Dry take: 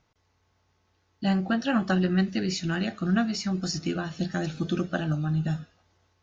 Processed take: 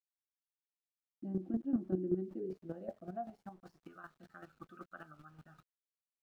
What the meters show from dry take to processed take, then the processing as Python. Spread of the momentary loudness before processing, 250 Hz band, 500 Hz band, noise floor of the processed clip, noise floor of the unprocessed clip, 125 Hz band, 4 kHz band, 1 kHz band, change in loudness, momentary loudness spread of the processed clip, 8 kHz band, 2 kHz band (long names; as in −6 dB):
6 LU, −14.0 dB, −9.5 dB, below −85 dBFS, −71 dBFS, −20.0 dB, below −35 dB, −15.5 dB, −12.0 dB, 20 LU, can't be measured, −24.5 dB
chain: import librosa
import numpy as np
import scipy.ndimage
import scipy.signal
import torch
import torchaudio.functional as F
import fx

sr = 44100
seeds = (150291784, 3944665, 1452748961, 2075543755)

y = fx.filter_sweep_bandpass(x, sr, from_hz=320.0, to_hz=1300.0, start_s=2.11, end_s=4.03, q=6.4)
y = np.where(np.abs(y) >= 10.0 ** (-58.0 / 20.0), y, 0.0)
y = fx.chopper(y, sr, hz=5.2, depth_pct=65, duty_pct=15)
y = fx.tilt_shelf(y, sr, db=7.5, hz=790.0)
y = F.gain(torch.from_numpy(y), 1.5).numpy()